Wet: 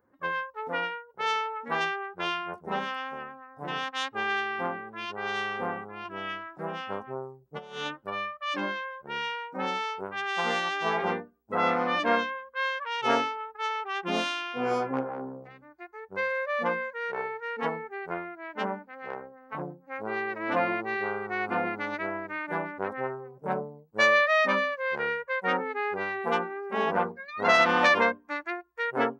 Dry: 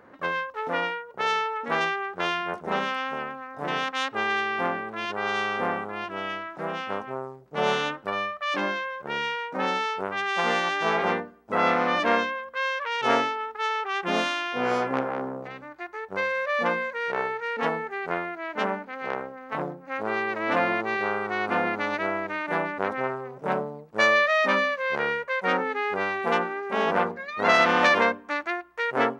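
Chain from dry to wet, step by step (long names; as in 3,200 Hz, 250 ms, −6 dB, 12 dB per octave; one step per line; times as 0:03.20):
spectral dynamics exaggerated over time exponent 1.5
0:06.05–0:07.87: compressor whose output falls as the input rises −33 dBFS, ratio −0.5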